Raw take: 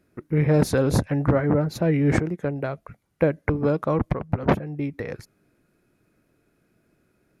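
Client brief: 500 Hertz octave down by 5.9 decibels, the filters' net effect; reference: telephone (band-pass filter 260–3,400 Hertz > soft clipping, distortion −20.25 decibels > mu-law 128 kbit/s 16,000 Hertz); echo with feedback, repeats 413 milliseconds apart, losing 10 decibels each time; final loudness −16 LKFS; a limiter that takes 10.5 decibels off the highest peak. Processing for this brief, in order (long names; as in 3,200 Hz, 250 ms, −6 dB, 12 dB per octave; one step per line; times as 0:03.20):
parametric band 500 Hz −6.5 dB
brickwall limiter −18.5 dBFS
band-pass filter 260–3,400 Hz
repeating echo 413 ms, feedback 32%, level −10 dB
soft clipping −20 dBFS
level +17.5 dB
mu-law 128 kbit/s 16,000 Hz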